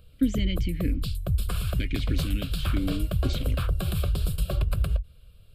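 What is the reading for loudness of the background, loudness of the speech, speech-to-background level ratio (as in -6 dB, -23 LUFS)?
-29.5 LUFS, -33.0 LUFS, -3.5 dB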